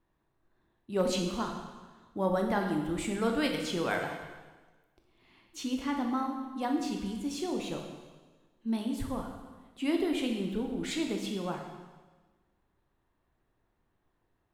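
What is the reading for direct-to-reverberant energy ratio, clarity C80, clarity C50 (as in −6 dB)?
2.0 dB, 6.5 dB, 5.0 dB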